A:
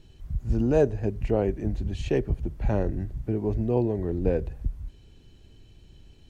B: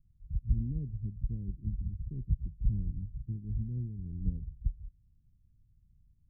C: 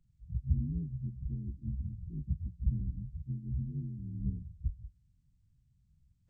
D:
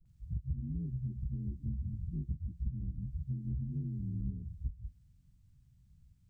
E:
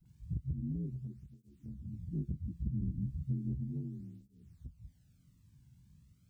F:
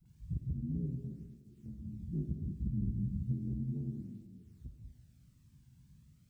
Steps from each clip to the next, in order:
inverse Chebyshev low-pass filter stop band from 1,100 Hz, stop band 80 dB; expander for the loud parts 1.5 to 1, over −43 dBFS; level −1.5 dB
partials spread apart or drawn together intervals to 80%
all-pass dispersion highs, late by 58 ms, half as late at 310 Hz; downward compressor, threshold −39 dBFS, peak gain reduction 15.5 dB; level +5.5 dB
through-zero flanger with one copy inverted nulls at 0.35 Hz, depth 1.7 ms; level +9 dB
comb and all-pass reverb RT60 1.3 s, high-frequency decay 1×, pre-delay 15 ms, DRR 3 dB

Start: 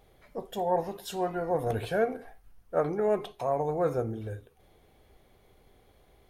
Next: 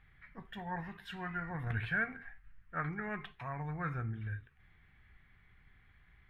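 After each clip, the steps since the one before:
drawn EQ curve 160 Hz 0 dB, 530 Hz −24 dB, 1,800 Hz +10 dB, 6,300 Hz −23 dB
level −1 dB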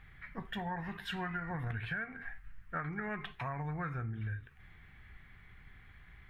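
downward compressor 16 to 1, threshold −42 dBFS, peak gain reduction 14 dB
level +7.5 dB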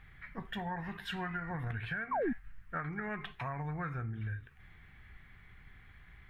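sound drawn into the spectrogram fall, 0:02.11–0:02.33, 210–1,200 Hz −32 dBFS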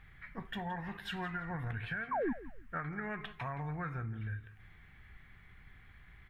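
repeating echo 169 ms, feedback 24%, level −16.5 dB
level −1 dB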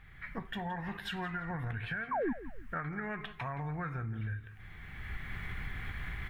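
camcorder AGC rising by 18 dB per second
level +1 dB

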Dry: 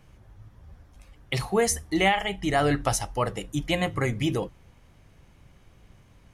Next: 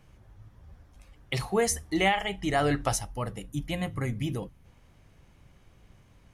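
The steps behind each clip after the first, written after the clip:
gain on a spectral selection 0:03.00–0:04.65, 300–8,900 Hz −6 dB
level −2.5 dB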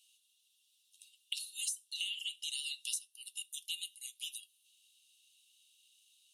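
Chebyshev high-pass with heavy ripple 2,700 Hz, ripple 9 dB
downward compressor 12 to 1, threshold −45 dBFS, peak gain reduction 17 dB
level +10 dB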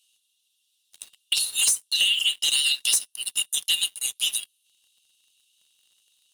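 leveller curve on the samples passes 3
level +8 dB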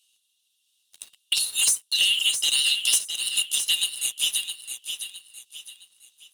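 repeating echo 663 ms, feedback 36%, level −8 dB

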